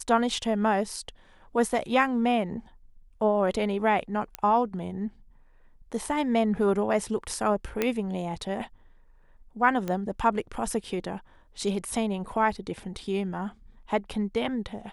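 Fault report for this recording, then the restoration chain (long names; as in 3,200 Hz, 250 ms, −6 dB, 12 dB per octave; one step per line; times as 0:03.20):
0:04.35: click −15 dBFS
0:07.82: click −11 dBFS
0:09.88: click −18 dBFS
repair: click removal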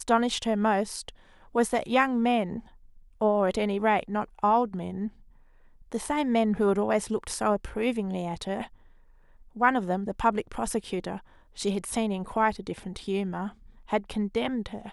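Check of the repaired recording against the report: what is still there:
0:09.88: click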